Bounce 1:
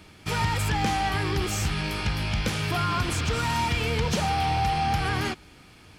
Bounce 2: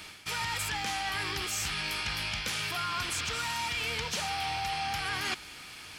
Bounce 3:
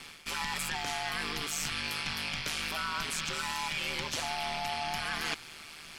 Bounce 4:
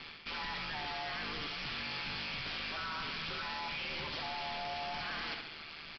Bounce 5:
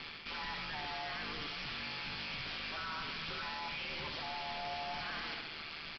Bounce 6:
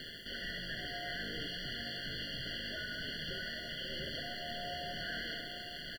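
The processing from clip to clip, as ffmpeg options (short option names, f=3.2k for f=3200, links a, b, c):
-af "tiltshelf=f=780:g=-8.5,areverse,acompressor=threshold=-33dB:ratio=6,areverse,volume=2dB"
-af "aeval=exprs='val(0)*sin(2*PI*77*n/s)':c=same,volume=1.5dB"
-af "aecho=1:1:68|136|204|272|340:0.282|0.124|0.0546|0.024|0.0106,aresample=11025,asoftclip=type=hard:threshold=-37dB,aresample=44100"
-af "alimiter=level_in=14.5dB:limit=-24dB:level=0:latency=1,volume=-14.5dB,volume=3.5dB"
-filter_complex "[0:a]acrusher=bits=9:mix=0:aa=0.000001,asplit=2[a][b];[b]aecho=0:1:840:0.299[c];[a][c]amix=inputs=2:normalize=0,afftfilt=real='re*eq(mod(floor(b*sr/1024/690),2),0)':imag='im*eq(mod(floor(b*sr/1024/690),2),0)':win_size=1024:overlap=0.75,volume=3dB"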